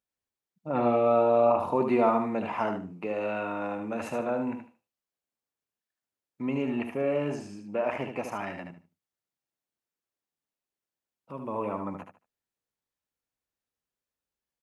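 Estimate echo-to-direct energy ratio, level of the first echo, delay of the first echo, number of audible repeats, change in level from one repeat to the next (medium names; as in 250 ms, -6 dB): -6.5 dB, -6.5 dB, 75 ms, 3, -13.5 dB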